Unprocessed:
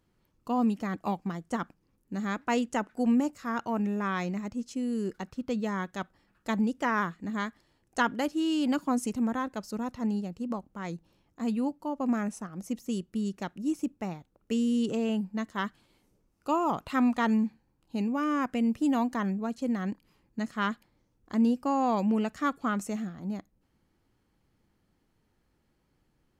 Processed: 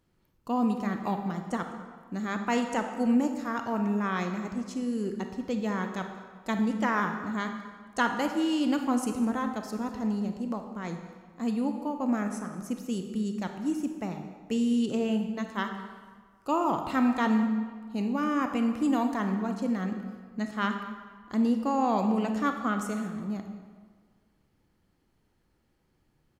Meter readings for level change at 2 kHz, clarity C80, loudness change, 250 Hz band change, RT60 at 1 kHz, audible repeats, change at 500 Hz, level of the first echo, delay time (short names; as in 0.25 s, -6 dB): +1.0 dB, 8.0 dB, +1.0 dB, +1.0 dB, 1.6 s, 1, +1.0 dB, -19.0 dB, 0.205 s